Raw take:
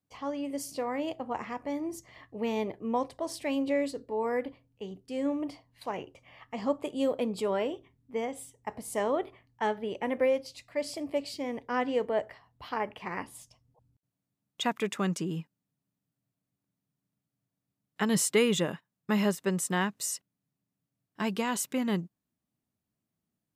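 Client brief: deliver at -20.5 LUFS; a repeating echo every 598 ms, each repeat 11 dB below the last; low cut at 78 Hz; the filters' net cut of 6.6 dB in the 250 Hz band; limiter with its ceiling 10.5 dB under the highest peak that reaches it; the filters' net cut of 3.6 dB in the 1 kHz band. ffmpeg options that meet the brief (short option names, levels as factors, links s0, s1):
-af "highpass=78,equalizer=f=250:t=o:g=-8,equalizer=f=1000:t=o:g=-4,alimiter=level_in=1.41:limit=0.0631:level=0:latency=1,volume=0.708,aecho=1:1:598|1196|1794:0.282|0.0789|0.0221,volume=7.94"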